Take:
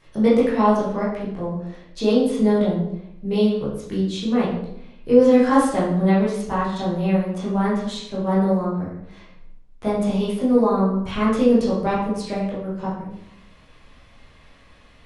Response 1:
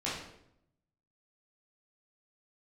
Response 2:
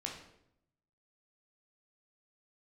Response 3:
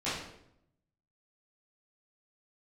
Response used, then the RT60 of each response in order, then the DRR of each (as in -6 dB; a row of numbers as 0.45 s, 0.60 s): 1; 0.75 s, 0.75 s, 0.75 s; -9.0 dB, -1.0 dB, -14.0 dB